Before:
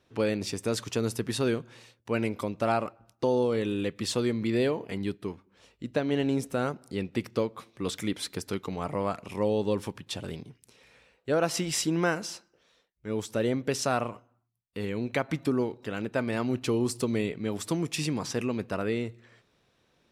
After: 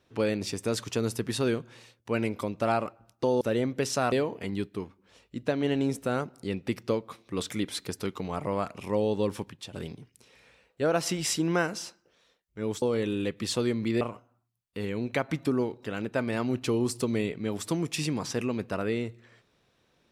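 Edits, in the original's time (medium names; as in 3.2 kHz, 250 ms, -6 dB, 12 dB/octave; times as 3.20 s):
3.41–4.60 s: swap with 13.30–14.01 s
9.90–10.21 s: fade out, to -10.5 dB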